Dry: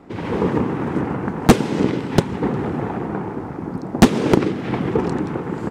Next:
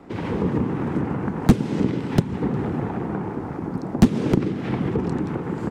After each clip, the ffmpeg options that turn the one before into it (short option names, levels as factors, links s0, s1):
-filter_complex "[0:a]acrossover=split=270[s0][s1];[s1]acompressor=threshold=0.0316:ratio=2.5[s2];[s0][s2]amix=inputs=2:normalize=0"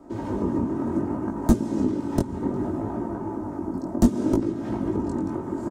-af "aecho=1:1:3.2:0.66,flanger=delay=17.5:depth=4.4:speed=0.65,firequalizer=gain_entry='entry(870,0);entry(2300,-14);entry(6600,3)':delay=0.05:min_phase=1"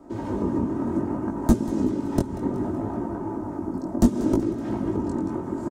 -af "aecho=1:1:188|376|564|752|940:0.158|0.0856|0.0462|0.025|0.0135"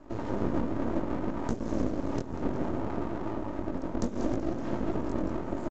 -af "alimiter=limit=0.168:level=0:latency=1:release=188,aresample=16000,aeval=exprs='max(val(0),0)':c=same,aresample=44100"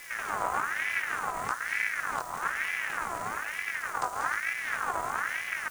-af "aeval=exprs='val(0)+0.5*0.00891*sgn(val(0))':c=same,highshelf=f=4200:g=7.5,aeval=exprs='val(0)*sin(2*PI*1500*n/s+1500*0.35/1.1*sin(2*PI*1.1*n/s))':c=same"